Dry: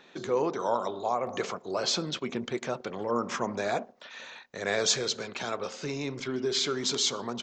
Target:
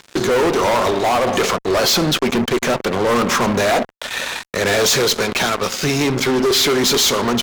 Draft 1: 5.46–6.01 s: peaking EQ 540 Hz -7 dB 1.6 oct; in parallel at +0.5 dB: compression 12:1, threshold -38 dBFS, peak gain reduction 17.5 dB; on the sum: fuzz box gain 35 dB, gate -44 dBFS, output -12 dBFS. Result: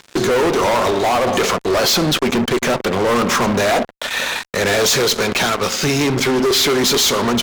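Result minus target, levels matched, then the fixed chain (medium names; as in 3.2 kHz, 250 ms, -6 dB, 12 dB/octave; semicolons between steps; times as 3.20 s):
compression: peak gain reduction -8 dB
5.46–6.01 s: peaking EQ 540 Hz -7 dB 1.6 oct; in parallel at +0.5 dB: compression 12:1, threshold -47 dBFS, peak gain reduction 26 dB; on the sum: fuzz box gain 35 dB, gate -44 dBFS, output -12 dBFS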